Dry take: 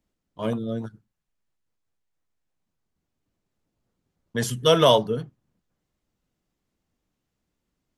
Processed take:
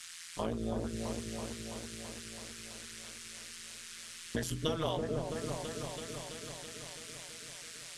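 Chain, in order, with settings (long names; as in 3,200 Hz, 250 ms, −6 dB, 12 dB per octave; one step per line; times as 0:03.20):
noise in a band 1,400–9,700 Hz −51 dBFS
downward compressor 8 to 1, threshold −35 dBFS, peak gain reduction 22 dB
amplitude modulation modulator 170 Hz, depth 75%
on a send: echo whose low-pass opens from repeat to repeat 331 ms, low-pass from 750 Hz, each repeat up 1 octave, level −3 dB
on the sum: level +6 dB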